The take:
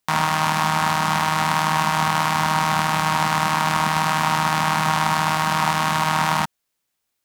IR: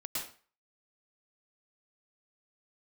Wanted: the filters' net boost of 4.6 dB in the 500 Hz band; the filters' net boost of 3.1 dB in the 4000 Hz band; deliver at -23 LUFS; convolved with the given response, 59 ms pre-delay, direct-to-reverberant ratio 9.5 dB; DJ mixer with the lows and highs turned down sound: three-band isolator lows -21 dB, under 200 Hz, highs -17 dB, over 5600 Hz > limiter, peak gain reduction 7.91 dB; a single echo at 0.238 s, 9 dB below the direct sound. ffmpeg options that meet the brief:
-filter_complex "[0:a]equalizer=f=500:t=o:g=6.5,equalizer=f=4k:t=o:g=5.5,aecho=1:1:238:0.355,asplit=2[a][b];[1:a]atrim=start_sample=2205,adelay=59[c];[b][c]afir=irnorm=-1:irlink=0,volume=-11.5dB[d];[a][d]amix=inputs=2:normalize=0,acrossover=split=200 5600:gain=0.0891 1 0.141[e][f][g];[e][f][g]amix=inputs=3:normalize=0,volume=-0.5dB,alimiter=limit=-11dB:level=0:latency=1"

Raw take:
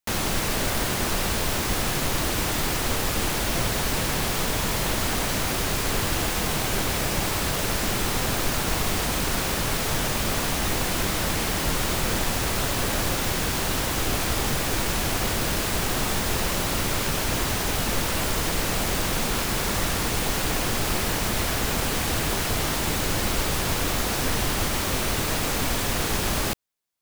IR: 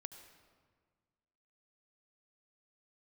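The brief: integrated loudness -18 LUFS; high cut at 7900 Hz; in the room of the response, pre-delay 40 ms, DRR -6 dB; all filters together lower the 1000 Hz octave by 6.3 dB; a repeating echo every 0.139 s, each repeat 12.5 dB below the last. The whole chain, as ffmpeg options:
-filter_complex "[0:a]lowpass=7.9k,equalizer=f=1k:t=o:g=-8.5,aecho=1:1:139|278|417:0.237|0.0569|0.0137,asplit=2[a][b];[1:a]atrim=start_sample=2205,adelay=40[c];[b][c]afir=irnorm=-1:irlink=0,volume=10.5dB[d];[a][d]amix=inputs=2:normalize=0,volume=2dB"

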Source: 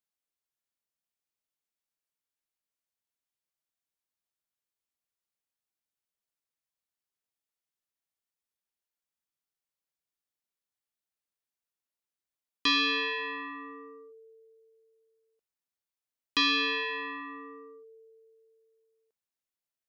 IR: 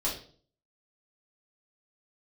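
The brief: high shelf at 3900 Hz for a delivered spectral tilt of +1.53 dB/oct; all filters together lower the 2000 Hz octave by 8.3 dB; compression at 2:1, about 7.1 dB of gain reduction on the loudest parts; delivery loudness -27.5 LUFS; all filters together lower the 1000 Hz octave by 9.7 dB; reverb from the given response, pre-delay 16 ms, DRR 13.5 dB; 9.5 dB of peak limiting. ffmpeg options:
-filter_complex "[0:a]equalizer=f=1k:t=o:g=-8.5,equalizer=f=2k:t=o:g=-6.5,highshelf=f=3.9k:g=-7.5,acompressor=threshold=-41dB:ratio=2,alimiter=level_in=11.5dB:limit=-24dB:level=0:latency=1,volume=-11.5dB,asplit=2[a][b];[1:a]atrim=start_sample=2205,adelay=16[c];[b][c]afir=irnorm=-1:irlink=0,volume=-19.5dB[d];[a][d]amix=inputs=2:normalize=0,volume=16dB"

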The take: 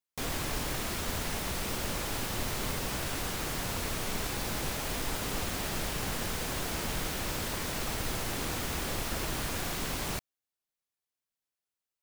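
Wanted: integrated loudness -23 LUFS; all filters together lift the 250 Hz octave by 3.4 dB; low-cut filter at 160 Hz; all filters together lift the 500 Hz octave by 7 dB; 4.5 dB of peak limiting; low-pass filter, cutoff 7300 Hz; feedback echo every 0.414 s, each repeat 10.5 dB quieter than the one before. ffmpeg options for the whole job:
-af "highpass=160,lowpass=7.3k,equalizer=f=250:t=o:g=3,equalizer=f=500:t=o:g=8,alimiter=level_in=1dB:limit=-24dB:level=0:latency=1,volume=-1dB,aecho=1:1:414|828|1242:0.299|0.0896|0.0269,volume=11dB"

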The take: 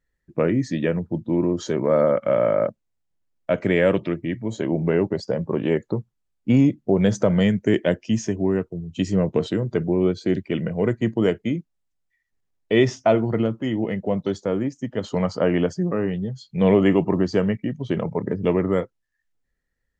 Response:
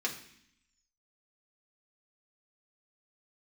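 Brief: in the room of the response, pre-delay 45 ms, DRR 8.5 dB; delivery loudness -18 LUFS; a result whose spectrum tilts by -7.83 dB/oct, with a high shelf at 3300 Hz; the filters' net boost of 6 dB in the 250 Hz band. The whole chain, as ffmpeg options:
-filter_complex "[0:a]equalizer=f=250:t=o:g=8,highshelf=f=3.3k:g=-7,asplit=2[a][b];[1:a]atrim=start_sample=2205,adelay=45[c];[b][c]afir=irnorm=-1:irlink=0,volume=-13.5dB[d];[a][d]amix=inputs=2:normalize=0"

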